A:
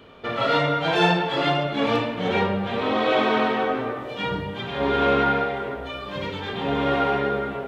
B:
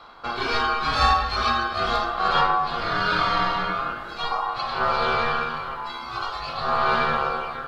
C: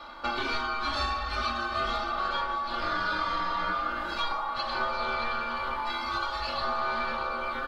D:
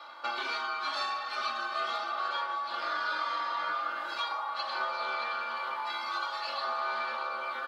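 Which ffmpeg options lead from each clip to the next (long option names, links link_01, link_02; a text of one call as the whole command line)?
ffmpeg -i in.wav -af "aeval=exprs='val(0)*sin(2*PI*940*n/s)':channel_layout=same,aphaser=in_gain=1:out_gain=1:delay=1:decay=0.26:speed=0.43:type=sinusoidal,equalizer=frequency=125:width_type=o:width=1:gain=-3,equalizer=frequency=250:width_type=o:width=1:gain=-8,equalizer=frequency=500:width_type=o:width=1:gain=-8,equalizer=frequency=1000:width_type=o:width=1:gain=10,equalizer=frequency=2000:width_type=o:width=1:gain=-11,equalizer=frequency=4000:width_type=o:width=1:gain=3,volume=3dB" out.wav
ffmpeg -i in.wav -af "acompressor=threshold=-29dB:ratio=10,aecho=1:1:3.4:0.84,aecho=1:1:624:0.251" out.wav
ffmpeg -i in.wav -af "highpass=550,volume=-2.5dB" out.wav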